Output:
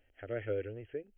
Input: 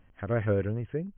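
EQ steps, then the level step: low shelf 360 Hz -11 dB; dynamic EQ 830 Hz, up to -6 dB, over -46 dBFS, Q 1.3; fixed phaser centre 440 Hz, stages 4; 0.0 dB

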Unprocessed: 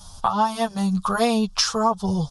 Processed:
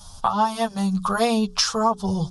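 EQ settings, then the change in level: notches 60/120/180/240/300/360/420 Hz; 0.0 dB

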